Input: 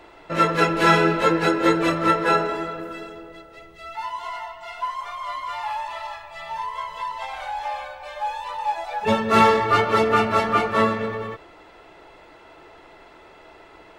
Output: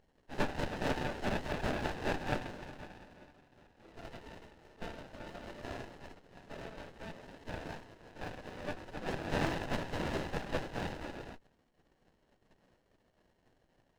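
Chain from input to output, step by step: spectral gate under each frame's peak -20 dB weak; speaker cabinet 210–2600 Hz, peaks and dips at 610 Hz +4 dB, 910 Hz +10 dB, 1700 Hz +5 dB; running maximum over 33 samples

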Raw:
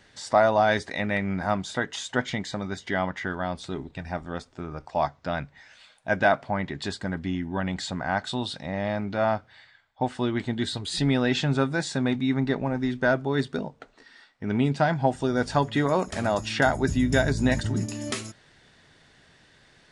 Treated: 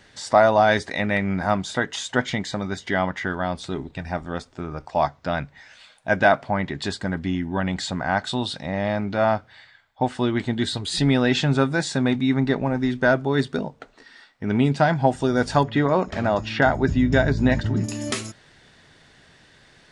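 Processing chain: 15.63–17.84 air absorption 170 m; gain +4 dB

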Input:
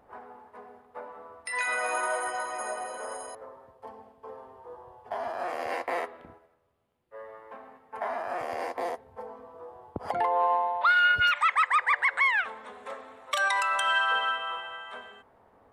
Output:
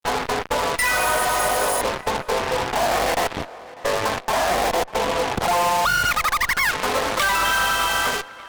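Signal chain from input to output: compressor 6:1, threshold -41 dBFS, peak gain reduction 19.5 dB; fuzz box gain 47 dB, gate -52 dBFS; granular stretch 0.54×, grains 40 ms; added harmonics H 8 -13 dB, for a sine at -11 dBFS; on a send: tape echo 0.597 s, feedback 69%, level -18 dB, low-pass 3500 Hz; on the sum: gain -2.5 dB

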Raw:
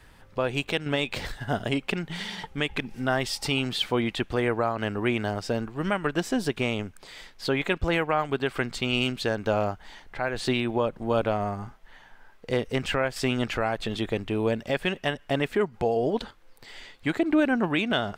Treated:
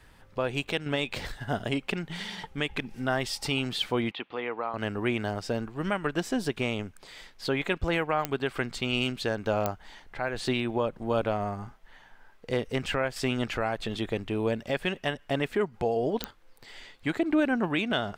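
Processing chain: 4.11–4.74 speaker cabinet 370–3500 Hz, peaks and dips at 370 Hz -6 dB, 620 Hz -8 dB, 1600 Hz -8 dB; pops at 8.25/9.66/16.24, -9 dBFS; gain -2.5 dB

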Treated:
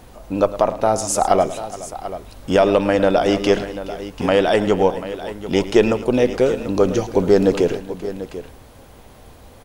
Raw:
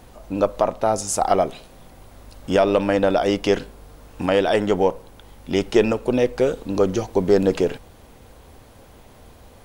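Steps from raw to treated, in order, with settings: tapped delay 0.108/0.422/0.739 s -15/-17.5/-13.5 dB; gain +2.5 dB

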